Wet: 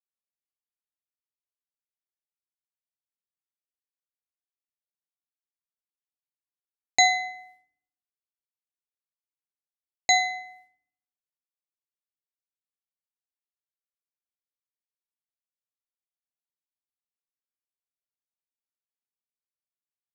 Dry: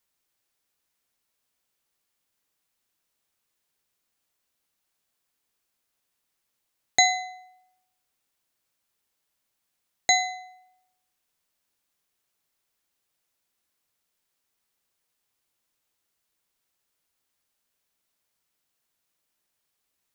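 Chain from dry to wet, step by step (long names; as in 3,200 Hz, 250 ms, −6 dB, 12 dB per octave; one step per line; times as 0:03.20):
downward expander −53 dBFS
feedback delay network reverb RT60 0.79 s, low-frequency decay 1.25×, high-frequency decay 0.35×, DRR 11 dB
low-pass that shuts in the quiet parts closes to 2,400 Hz, open at −37 dBFS
level −1 dB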